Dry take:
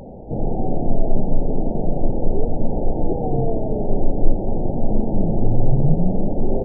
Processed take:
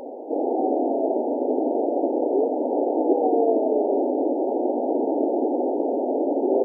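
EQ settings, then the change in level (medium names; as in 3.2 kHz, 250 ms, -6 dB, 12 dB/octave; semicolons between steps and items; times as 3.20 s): brick-wall FIR high-pass 250 Hz; +5.0 dB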